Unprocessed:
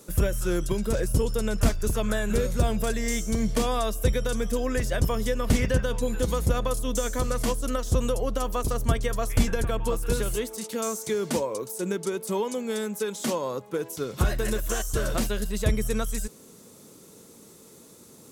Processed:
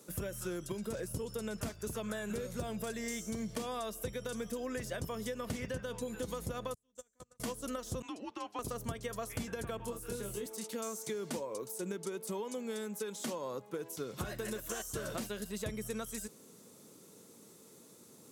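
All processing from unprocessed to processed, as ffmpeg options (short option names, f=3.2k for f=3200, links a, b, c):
-filter_complex "[0:a]asettb=1/sr,asplit=3[a][b][c];[a]atrim=end=6.744[d];[b]atrim=start=6.74:end=7.4,asetpts=PTS-STARTPTS,afade=t=in:d=0.004:c=qsin,afade=t=out:st=0.656:d=0.004:c=qsin,equalizer=f=7.6k:t=o:w=0.46:g=8.5,agate=range=-41dB:threshold=-21dB:ratio=16:release=100:detection=peak[e];[c]atrim=start=7.396[f];[d][e]acrossfade=d=0.004:c1=hsin:c2=qsin[g];[g][f]acrossfade=d=0.004:c1=qsin:c2=hsin,asettb=1/sr,asplit=3[h][i][j];[h]atrim=end=8.024[k];[i]atrim=start=8.02:end=8.59,asetpts=PTS-STARTPTS,afade=t=in:d=0.004:c=qsin,afade=t=out:st=0.566:d=0.004:c=qsin,agate=range=-33dB:threshold=-26dB:ratio=3:release=100:detection=peak,highpass=770,lowpass=4.5k,afreqshift=-210[l];[j]atrim=start=8.586[m];[k][l]acrossfade=d=0.004:c1=hsin:c2=qsin[n];[n][m]acrossfade=d=0.004:c1=qsin:c2=hsin,asettb=1/sr,asplit=3[o][p][q];[o]atrim=end=9.774[r];[p]atrim=start=9.77:end=10.46,asetpts=PTS-STARTPTS,afade=t=in:d=0.004:c=qsin,afade=t=out:st=0.686:d=0.004:c=qsin,acrossover=split=460|920|6000[s][t][u][v];[s]acompressor=threshold=-29dB:ratio=3[w];[t]acompressor=threshold=-42dB:ratio=3[x];[u]acompressor=threshold=-47dB:ratio=3[y];[v]acompressor=threshold=-40dB:ratio=3[z];[w][x][y][z]amix=inputs=4:normalize=0,asplit=2[aa][ab];[ab]adelay=25,volume=-4dB[ac];[aa][ac]amix=inputs=2:normalize=0,atrim=end_sample=30429[ad];[q]atrim=start=10.456[ae];[r][ad]acrossfade=d=0.004:c1=hsin:c2=qsin[af];[af][ae]acrossfade=d=0.004:c1=qsin:c2=hsin,highpass=110,acompressor=threshold=-28dB:ratio=6,volume=-7dB"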